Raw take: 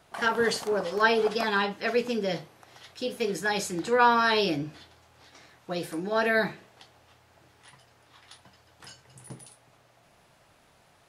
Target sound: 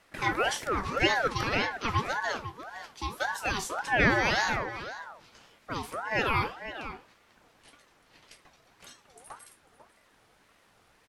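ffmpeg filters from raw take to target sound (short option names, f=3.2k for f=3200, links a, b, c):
-filter_complex "[0:a]asplit=2[a][b];[b]adelay=495.6,volume=-11dB,highshelf=f=4k:g=-11.2[c];[a][c]amix=inputs=2:normalize=0,aeval=exprs='val(0)*sin(2*PI*940*n/s+940*0.4/1.8*sin(2*PI*1.8*n/s))':c=same"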